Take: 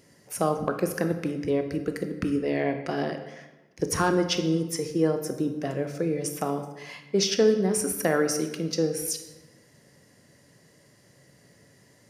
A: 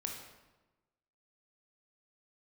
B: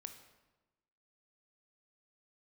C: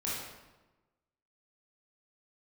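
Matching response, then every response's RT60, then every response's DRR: B; 1.1, 1.1, 1.1 seconds; 1.0, 7.0, −7.5 decibels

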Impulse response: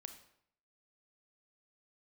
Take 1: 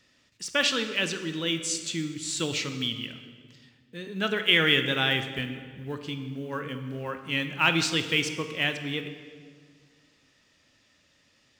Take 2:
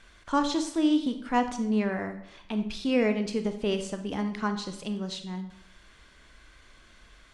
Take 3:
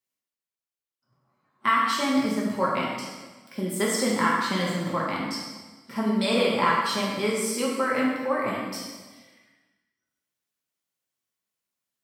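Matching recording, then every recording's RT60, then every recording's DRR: 2; 1.9, 0.70, 1.3 seconds; 7.5, 7.0, −5.0 decibels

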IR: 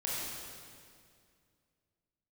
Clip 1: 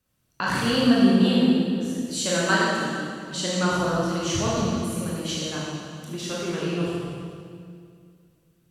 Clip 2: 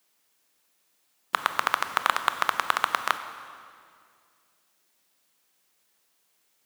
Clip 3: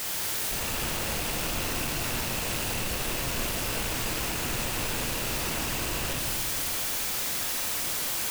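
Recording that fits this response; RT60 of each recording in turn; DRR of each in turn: 1; 2.2, 2.2, 2.2 seconds; −6.5, 9.5, −0.5 decibels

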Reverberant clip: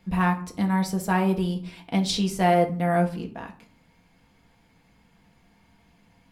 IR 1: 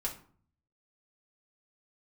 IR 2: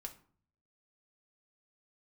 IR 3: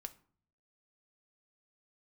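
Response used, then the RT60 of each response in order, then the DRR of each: 2; 0.50, 0.50, 0.50 seconds; −3.0, 3.0, 8.0 decibels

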